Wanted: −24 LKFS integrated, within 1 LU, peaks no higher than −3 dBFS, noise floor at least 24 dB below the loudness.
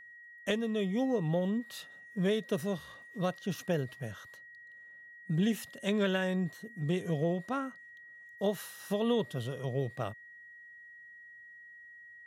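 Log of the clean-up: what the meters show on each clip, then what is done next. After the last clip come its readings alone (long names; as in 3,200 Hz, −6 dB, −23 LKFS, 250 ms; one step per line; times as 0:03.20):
interfering tone 1,900 Hz; level of the tone −50 dBFS; integrated loudness −34.0 LKFS; sample peak −17.5 dBFS; target loudness −24.0 LKFS
→ notch filter 1,900 Hz, Q 30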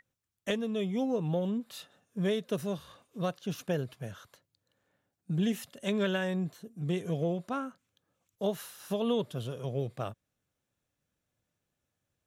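interfering tone none found; integrated loudness −33.5 LKFS; sample peak −17.5 dBFS; target loudness −24.0 LKFS
→ level +9.5 dB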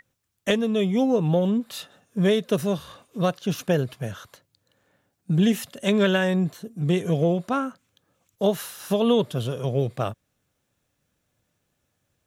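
integrated loudness −24.5 LKFS; sample peak −8.0 dBFS; background noise floor −76 dBFS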